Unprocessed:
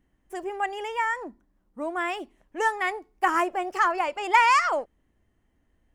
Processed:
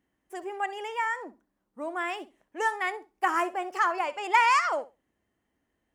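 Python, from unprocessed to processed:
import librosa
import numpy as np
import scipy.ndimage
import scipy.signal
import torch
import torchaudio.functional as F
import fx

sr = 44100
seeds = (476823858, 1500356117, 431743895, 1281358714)

p1 = fx.highpass(x, sr, hz=260.0, slope=6)
p2 = p1 + fx.room_flutter(p1, sr, wall_m=11.1, rt60_s=0.23, dry=0)
y = p2 * librosa.db_to_amplitude(-2.5)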